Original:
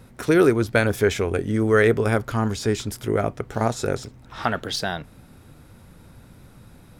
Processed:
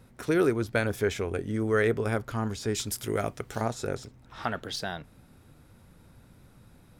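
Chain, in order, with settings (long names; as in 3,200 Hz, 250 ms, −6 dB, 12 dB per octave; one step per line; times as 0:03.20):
0:02.74–0:03.60: high-shelf EQ 3,200 Hz → 2,100 Hz +11.5 dB
level −7.5 dB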